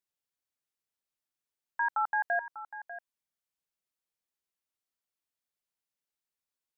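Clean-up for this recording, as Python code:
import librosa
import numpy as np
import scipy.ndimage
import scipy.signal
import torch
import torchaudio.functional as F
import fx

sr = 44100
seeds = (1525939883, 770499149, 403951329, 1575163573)

y = fx.fix_echo_inverse(x, sr, delay_ms=595, level_db=-13.5)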